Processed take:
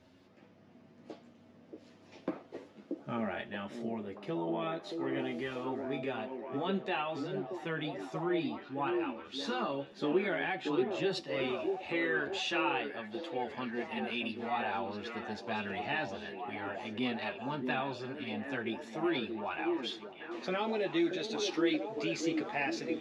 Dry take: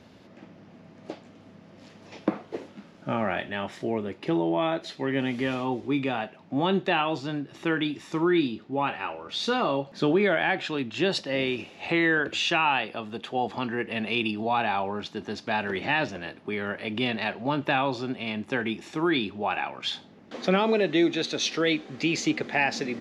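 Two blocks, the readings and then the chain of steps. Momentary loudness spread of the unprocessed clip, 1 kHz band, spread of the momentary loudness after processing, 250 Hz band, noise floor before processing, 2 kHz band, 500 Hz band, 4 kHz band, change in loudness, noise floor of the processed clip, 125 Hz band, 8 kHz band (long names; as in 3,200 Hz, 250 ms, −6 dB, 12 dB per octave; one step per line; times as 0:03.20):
10 LU, −9.0 dB, 9 LU, −7.5 dB, −52 dBFS, −9.5 dB, −7.0 dB, −10.0 dB, −8.5 dB, −60 dBFS, −10.5 dB, −10.5 dB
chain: multi-voice chorus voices 4, 0.11 Hz, delay 11 ms, depth 3.2 ms
echo through a band-pass that steps 630 ms, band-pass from 350 Hz, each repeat 0.7 octaves, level −1 dB
level −7 dB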